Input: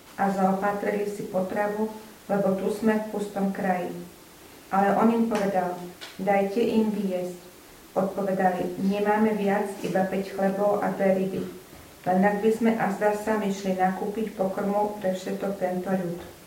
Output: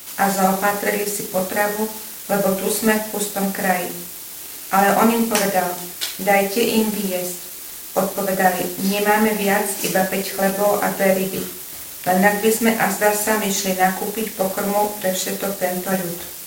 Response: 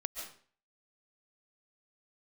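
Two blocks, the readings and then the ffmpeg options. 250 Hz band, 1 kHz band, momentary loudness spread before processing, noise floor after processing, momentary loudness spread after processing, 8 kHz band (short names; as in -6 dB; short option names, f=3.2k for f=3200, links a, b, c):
+3.5 dB, +6.5 dB, 9 LU, -34 dBFS, 10 LU, +21.5 dB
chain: -af "crystalizer=i=7.5:c=0,aeval=exprs='sgn(val(0))*max(abs(val(0))-0.0106,0)':c=same,volume=4.5dB"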